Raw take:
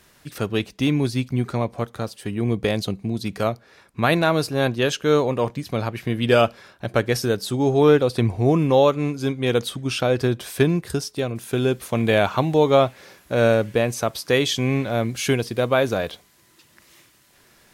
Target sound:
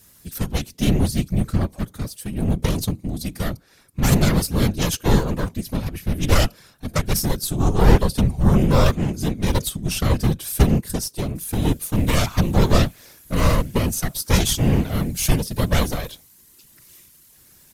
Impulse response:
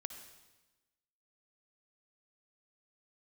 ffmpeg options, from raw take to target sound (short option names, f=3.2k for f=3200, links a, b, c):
-filter_complex "[0:a]aeval=exprs='0.631*(cos(1*acos(clip(val(0)/0.631,-1,1)))-cos(1*PI/2))+0.282*(cos(4*acos(clip(val(0)/0.631,-1,1)))-cos(4*PI/2))':c=same,bass=f=250:g=11,treble=f=4k:g=4,afftfilt=real='hypot(re,im)*cos(2*PI*random(0))':imag='hypot(re,im)*sin(2*PI*random(1))':win_size=512:overlap=0.75,asplit=2[a][b];[b]volume=10.5dB,asoftclip=hard,volume=-10.5dB,volume=-10dB[c];[a][c]amix=inputs=2:normalize=0,aemphasis=mode=production:type=50fm,aresample=32000,aresample=44100,volume=-3dB"